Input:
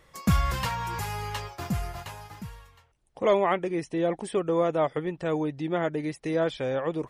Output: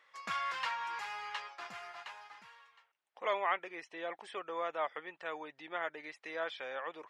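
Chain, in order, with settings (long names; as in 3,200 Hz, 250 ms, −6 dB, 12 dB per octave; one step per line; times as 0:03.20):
high-pass filter 1,400 Hz 12 dB per octave
head-to-tape spacing loss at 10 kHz 27 dB
level +3.5 dB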